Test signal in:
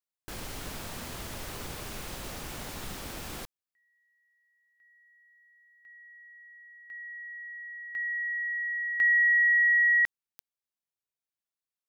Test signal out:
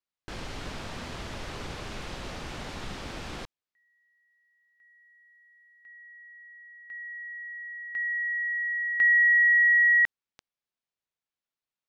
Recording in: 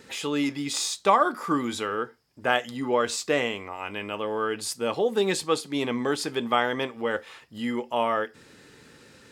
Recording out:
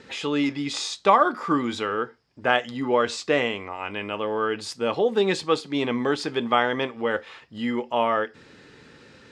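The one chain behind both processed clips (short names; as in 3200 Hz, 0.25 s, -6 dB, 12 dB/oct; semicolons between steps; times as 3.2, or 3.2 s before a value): LPF 4900 Hz 12 dB/oct; gain +2.5 dB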